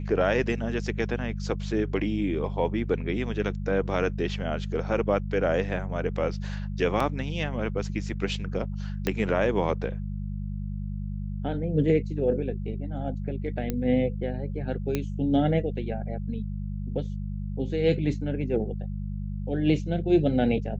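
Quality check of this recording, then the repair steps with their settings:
hum 50 Hz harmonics 4 -32 dBFS
7.00 s: dropout 4.1 ms
9.07 s: pop -12 dBFS
13.70 s: pop -15 dBFS
14.95 s: pop -13 dBFS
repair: de-click; de-hum 50 Hz, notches 4; interpolate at 7.00 s, 4.1 ms

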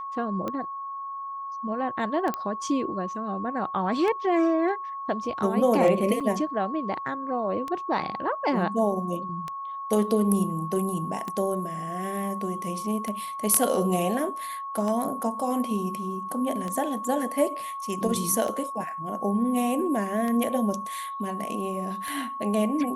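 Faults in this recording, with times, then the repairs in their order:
tick 33 1/3 rpm -18 dBFS
whine 1.1 kHz -32 dBFS
2.34 s: pop -15 dBFS
6.20–6.21 s: dropout 5.9 ms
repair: de-click; band-stop 1.1 kHz, Q 30; interpolate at 6.20 s, 5.9 ms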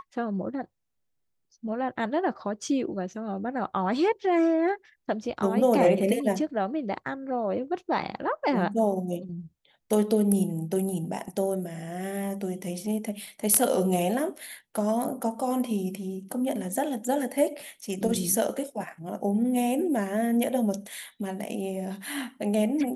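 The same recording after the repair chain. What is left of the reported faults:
nothing left

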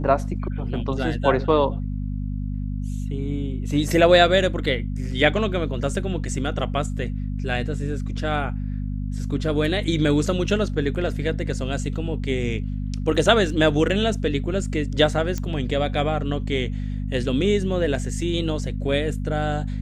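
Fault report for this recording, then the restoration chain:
hum 50 Hz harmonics 5 -27 dBFS
15.38 s: pop -14 dBFS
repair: de-click; de-hum 50 Hz, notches 5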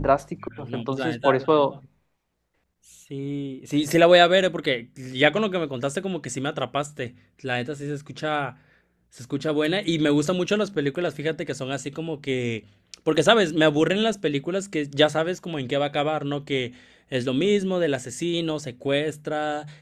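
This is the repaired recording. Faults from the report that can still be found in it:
nothing left

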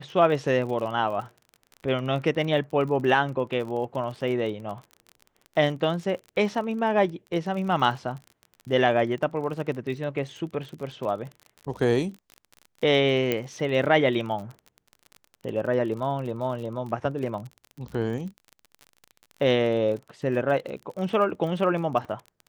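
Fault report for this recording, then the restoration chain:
crackle 37 per s -34 dBFS
13.32 s: pop -11 dBFS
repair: de-click

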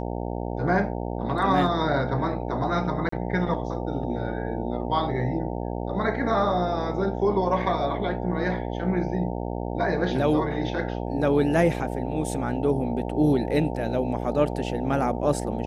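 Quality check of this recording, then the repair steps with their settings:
buzz 60 Hz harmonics 15 -30 dBFS
3.09–3.12 s: dropout 34 ms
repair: de-hum 60 Hz, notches 15; interpolate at 3.09 s, 34 ms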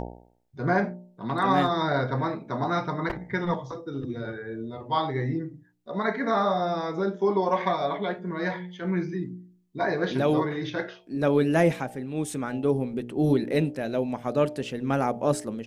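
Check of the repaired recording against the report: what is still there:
nothing left

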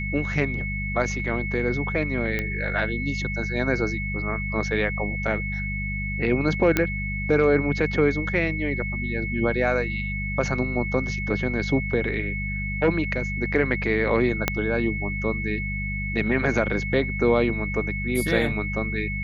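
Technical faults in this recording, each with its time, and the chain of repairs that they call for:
hum 50 Hz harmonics 4 -30 dBFS
whine 2.2 kHz -30 dBFS
2.39 s: pop -13 dBFS
6.77 s: pop -6 dBFS
14.48 s: pop -5 dBFS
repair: de-click; band-stop 2.2 kHz, Q 30; de-hum 50 Hz, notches 4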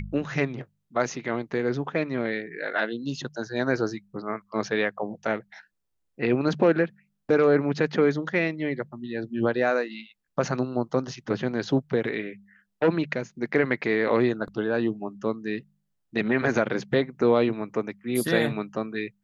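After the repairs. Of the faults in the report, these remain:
14.48 s: pop

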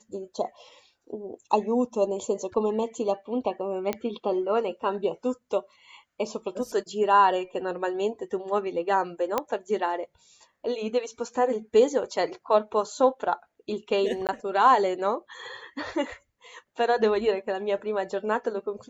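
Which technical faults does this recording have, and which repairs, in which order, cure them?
3.93 s: pop -14 dBFS
9.38 s: pop -11 dBFS
14.27–14.29 s: dropout 18 ms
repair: de-click; interpolate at 14.27 s, 18 ms

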